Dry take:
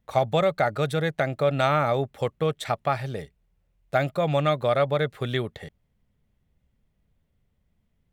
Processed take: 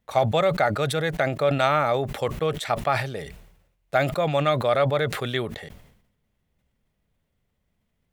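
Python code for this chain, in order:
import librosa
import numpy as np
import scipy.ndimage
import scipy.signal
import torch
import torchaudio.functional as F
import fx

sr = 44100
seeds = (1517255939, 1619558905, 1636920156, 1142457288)

y = fx.low_shelf(x, sr, hz=260.0, db=-7.5)
y = fx.sustainer(y, sr, db_per_s=69.0)
y = y * 10.0 ** (2.0 / 20.0)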